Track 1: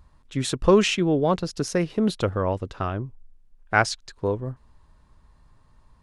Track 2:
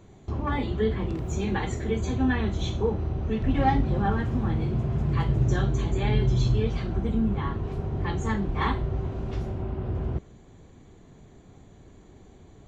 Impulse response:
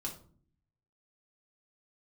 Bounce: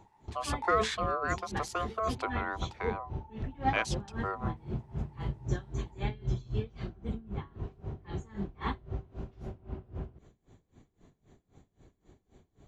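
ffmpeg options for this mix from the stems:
-filter_complex "[0:a]aeval=exprs='val(0)*sin(2*PI*880*n/s)':channel_layout=same,highpass=380,volume=-7.5dB[link_01];[1:a]aeval=exprs='val(0)*pow(10,-24*(0.5-0.5*cos(2*PI*3.8*n/s))/20)':channel_layout=same,volume=-5.5dB[link_02];[link_01][link_02]amix=inputs=2:normalize=0"

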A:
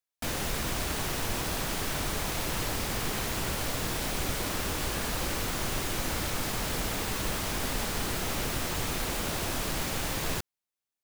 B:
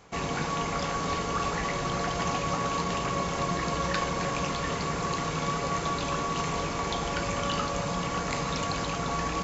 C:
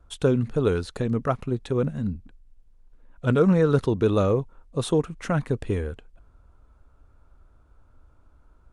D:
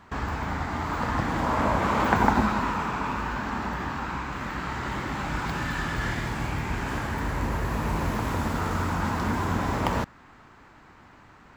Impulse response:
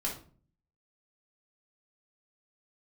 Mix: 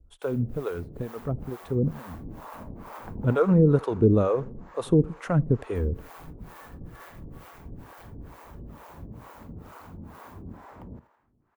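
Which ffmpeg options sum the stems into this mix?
-filter_complex "[0:a]aeval=exprs='val(0)*sin(2*PI*85*n/s)':channel_layout=same,volume=-8dB,asplit=3[link_01][link_02][link_03];[link_01]atrim=end=3.25,asetpts=PTS-STARTPTS,afade=type=out:start_time=3.246:duration=0.004:curve=hsin[link_04];[link_02]atrim=start=3.25:end=5.75,asetpts=PTS-STARTPTS,volume=0[link_05];[link_03]atrim=start=5.75,asetpts=PTS-STARTPTS,afade=type=in:duration=0.004:curve=hsin[link_06];[link_04][link_05][link_06]concat=n=3:v=0:a=1,asplit=2[link_07][link_08];[link_08]volume=-4dB[link_09];[1:a]adelay=1100,volume=-17dB[link_10];[2:a]dynaudnorm=framelen=830:gausssize=5:maxgain=11.5dB,volume=0dB,asplit=3[link_11][link_12][link_13];[link_12]volume=-21.5dB[link_14];[3:a]adelay=950,volume=-12dB,asplit=2[link_15][link_16];[link_16]volume=-15.5dB[link_17];[link_13]apad=whole_len=486515[link_18];[link_07][link_18]sidechaingate=range=-33dB:threshold=-45dB:ratio=16:detection=peak[link_19];[link_09][link_14][link_17]amix=inputs=3:normalize=0,aecho=0:1:82|164|246|328|410|492:1|0.46|0.212|0.0973|0.0448|0.0206[link_20];[link_19][link_10][link_11][link_15][link_20]amix=inputs=5:normalize=0,equalizer=frequency=5400:width=0.33:gain=-14.5,acrossover=split=470[link_21][link_22];[link_21]aeval=exprs='val(0)*(1-1/2+1/2*cos(2*PI*2.2*n/s))':channel_layout=same[link_23];[link_22]aeval=exprs='val(0)*(1-1/2-1/2*cos(2*PI*2.2*n/s))':channel_layout=same[link_24];[link_23][link_24]amix=inputs=2:normalize=0"

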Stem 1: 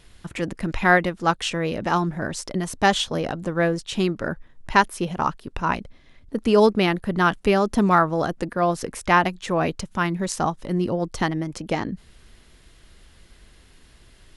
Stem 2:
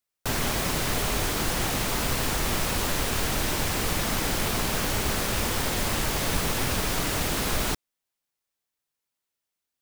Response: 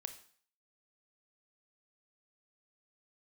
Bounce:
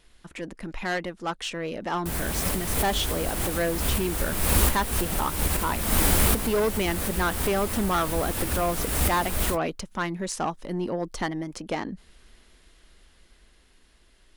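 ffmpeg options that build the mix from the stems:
-filter_complex "[0:a]asoftclip=type=tanh:threshold=-17dB,volume=-6dB,asplit=2[link_01][link_02];[1:a]equalizer=frequency=70:width_type=o:width=2.5:gain=14.5,flanger=delay=8.9:depth=6.2:regen=-42:speed=1.2:shape=sinusoidal,highshelf=frequency=7700:width_type=q:width=1.5:gain=6.5,adelay=1800,volume=2.5dB[link_03];[link_02]apad=whole_len=512102[link_04];[link_03][link_04]sidechaincompress=threshold=-39dB:ratio=8:attack=6.2:release=269[link_05];[link_01][link_05]amix=inputs=2:normalize=0,equalizer=frequency=110:width=1.5:gain=-12,dynaudnorm=framelen=400:gausssize=9:maxgain=4dB"

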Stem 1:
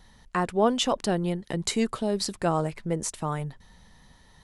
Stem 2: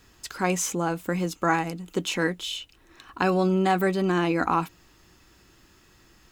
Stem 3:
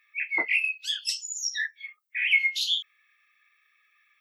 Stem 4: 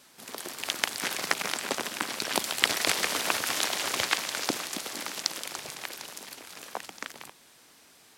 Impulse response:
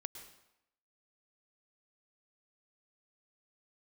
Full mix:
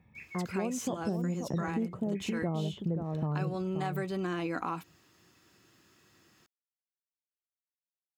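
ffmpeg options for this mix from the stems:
-filter_complex "[0:a]lowpass=1000,aemphasis=mode=reproduction:type=riaa,dynaudnorm=framelen=120:gausssize=11:maxgain=11.5dB,volume=-10dB,asplit=2[link_01][link_02];[link_02]volume=-8dB[link_03];[1:a]bandreject=frequency=870:width=13,adelay=150,volume=-6dB[link_04];[2:a]acompressor=threshold=-34dB:ratio=6,volume=-11.5dB[link_05];[link_03]aecho=0:1:529:1[link_06];[link_01][link_04][link_05][link_06]amix=inputs=4:normalize=0,highpass=frequency=95:width=0.5412,highpass=frequency=95:width=1.3066,acompressor=threshold=-30dB:ratio=5"

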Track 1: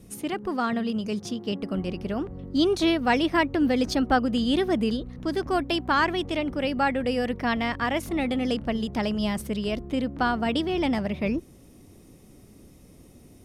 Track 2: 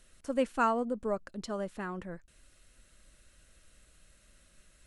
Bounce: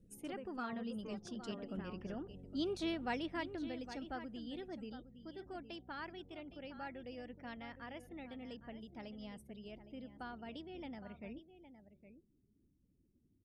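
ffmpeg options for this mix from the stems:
ffmpeg -i stem1.wav -i stem2.wav -filter_complex "[0:a]bandreject=frequency=1100:width=8.2,volume=-16dB,afade=type=out:start_time=3.04:duration=0.79:silence=0.446684,asplit=2[link_01][link_02];[link_02]volume=-12dB[link_03];[1:a]acompressor=threshold=-36dB:ratio=8,volume=-10.5dB[link_04];[link_03]aecho=0:1:812:1[link_05];[link_01][link_04][link_05]amix=inputs=3:normalize=0,afftdn=noise_reduction=19:noise_floor=-67" out.wav

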